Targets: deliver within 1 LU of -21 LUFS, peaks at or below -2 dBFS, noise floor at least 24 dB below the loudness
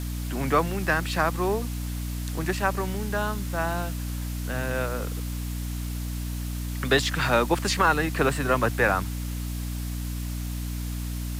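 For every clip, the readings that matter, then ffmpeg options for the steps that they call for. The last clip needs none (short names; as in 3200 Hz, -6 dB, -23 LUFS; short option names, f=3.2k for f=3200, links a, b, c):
hum 60 Hz; harmonics up to 300 Hz; hum level -28 dBFS; noise floor -31 dBFS; noise floor target -51 dBFS; loudness -27.0 LUFS; peak -8.5 dBFS; loudness target -21.0 LUFS
-> -af "bandreject=f=60:t=h:w=4,bandreject=f=120:t=h:w=4,bandreject=f=180:t=h:w=4,bandreject=f=240:t=h:w=4,bandreject=f=300:t=h:w=4"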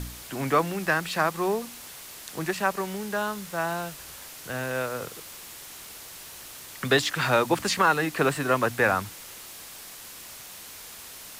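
hum none; noise floor -44 dBFS; noise floor target -50 dBFS
-> -af "afftdn=nr=6:nf=-44"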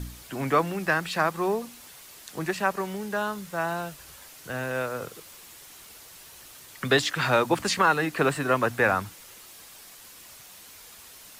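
noise floor -48 dBFS; noise floor target -51 dBFS
-> -af "afftdn=nr=6:nf=-48"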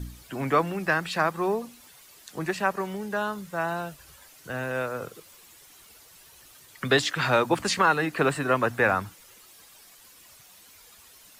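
noise floor -53 dBFS; loudness -26.5 LUFS; peak -9.0 dBFS; loudness target -21.0 LUFS
-> -af "volume=5.5dB"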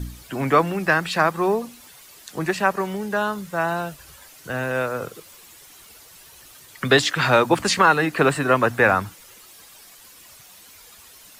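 loudness -21.0 LUFS; peak -3.5 dBFS; noise floor -48 dBFS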